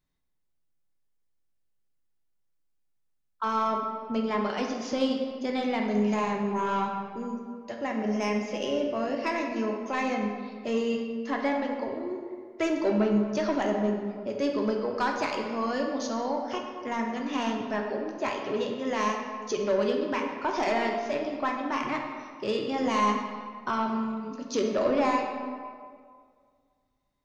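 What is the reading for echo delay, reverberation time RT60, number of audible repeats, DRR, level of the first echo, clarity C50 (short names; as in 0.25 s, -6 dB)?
none, 2.0 s, none, 1.0 dB, none, 3.5 dB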